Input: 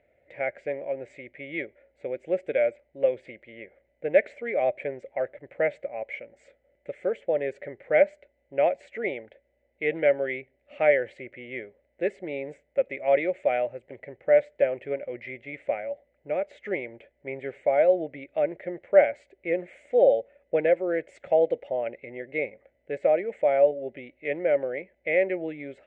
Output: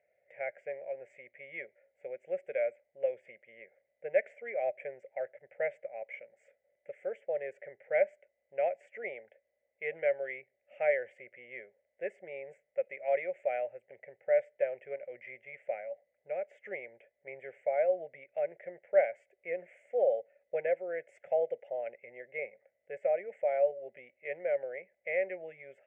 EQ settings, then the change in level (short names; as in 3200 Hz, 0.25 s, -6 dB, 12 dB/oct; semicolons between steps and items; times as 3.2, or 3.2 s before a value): HPF 210 Hz 12 dB/oct; fixed phaser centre 1100 Hz, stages 6; -7.5 dB